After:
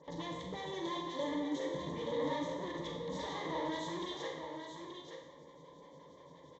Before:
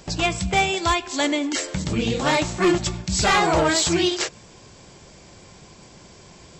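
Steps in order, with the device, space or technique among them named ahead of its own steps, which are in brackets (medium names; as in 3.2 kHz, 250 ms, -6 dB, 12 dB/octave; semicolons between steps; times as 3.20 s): vibe pedal into a guitar amplifier (lamp-driven phase shifter 5.7 Hz; valve stage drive 34 dB, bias 0.7; cabinet simulation 83–4600 Hz, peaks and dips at 93 Hz -9 dB, 430 Hz +8 dB, 910 Hz +3 dB, 1.5 kHz -9 dB, 2.6 kHz -9 dB); 0.73–1.24 s: comb 5.4 ms, depth 76%; rippled EQ curve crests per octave 1.1, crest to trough 14 dB; delay 879 ms -7.5 dB; Schroeder reverb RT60 0.76 s, combs from 32 ms, DRR 2 dB; trim -7.5 dB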